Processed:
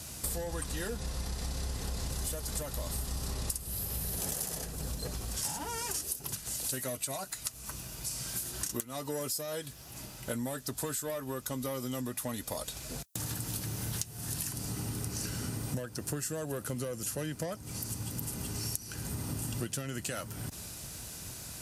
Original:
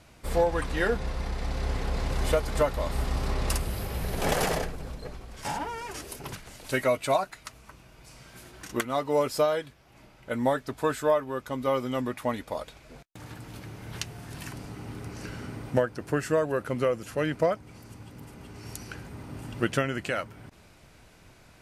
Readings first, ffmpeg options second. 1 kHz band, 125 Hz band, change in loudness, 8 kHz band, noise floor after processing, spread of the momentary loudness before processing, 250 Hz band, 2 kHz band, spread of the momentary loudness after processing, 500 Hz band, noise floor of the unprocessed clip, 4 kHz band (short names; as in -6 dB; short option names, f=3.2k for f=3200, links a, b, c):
-12.5 dB, -3.0 dB, -6.5 dB, +7.5 dB, -48 dBFS, 17 LU, -6.0 dB, -10.5 dB, 5 LU, -12.5 dB, -55 dBFS, -1.0 dB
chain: -filter_complex "[0:a]bass=f=250:g=6,treble=f=4k:g=13,acrossover=split=360|5100[a][b][c];[b]asoftclip=type=tanh:threshold=-26dB[d];[a][d][c]amix=inputs=3:normalize=0,highpass=48,highshelf=f=5.9k:g=9,acompressor=threshold=-36dB:ratio=12,bandreject=f=2.2k:w=12,volume=3.5dB"